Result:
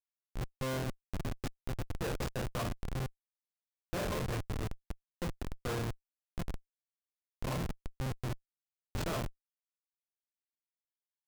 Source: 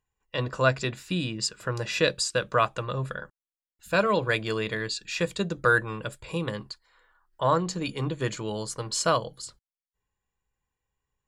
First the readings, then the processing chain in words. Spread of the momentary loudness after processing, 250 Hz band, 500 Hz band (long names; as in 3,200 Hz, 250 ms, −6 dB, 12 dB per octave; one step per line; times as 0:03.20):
8 LU, −9.0 dB, −14.0 dB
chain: resonators tuned to a chord F2 sus4, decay 0.66 s
comparator with hysteresis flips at −38.5 dBFS
level +10.5 dB